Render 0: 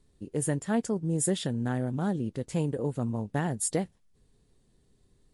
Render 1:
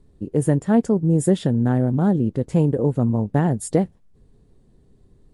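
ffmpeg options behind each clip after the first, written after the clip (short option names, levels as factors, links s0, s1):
-af "tiltshelf=f=1400:g=7,volume=1.68"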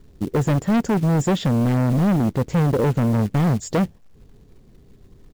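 -af "aresample=16000,asoftclip=type=hard:threshold=0.0891,aresample=44100,acrusher=bits=5:mode=log:mix=0:aa=0.000001,volume=1.88"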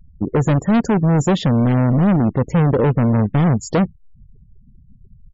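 -af "aresample=16000,aresample=44100,afftfilt=real='re*gte(hypot(re,im),0.0158)':imag='im*gte(hypot(re,im),0.0158)':win_size=1024:overlap=0.75,volume=1.5"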